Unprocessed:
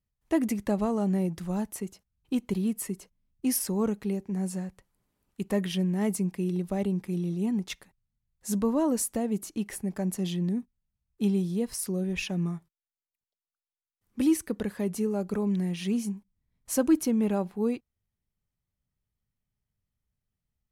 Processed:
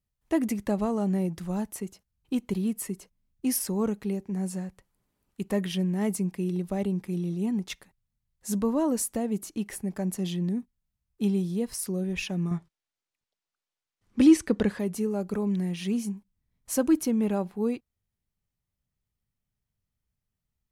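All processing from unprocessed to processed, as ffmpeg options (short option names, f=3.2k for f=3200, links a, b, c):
-filter_complex "[0:a]asettb=1/sr,asplit=3[a][b][c];[a]atrim=end=12.514[d];[b]atrim=start=12.51:end=14.79,asetpts=PTS-STARTPTS,afade=t=in:d=0.004:c=qsin,afade=t=out:st=2.276:d=0.004:c=qsin,lowpass=6.8k,acontrast=71[e];[c]atrim=start=14.786[f];[d][e]acrossfade=d=0.004:c1=hsin:c2=qsin[g];[g][f]acrossfade=d=0.004:c1=qsin:c2=hsin"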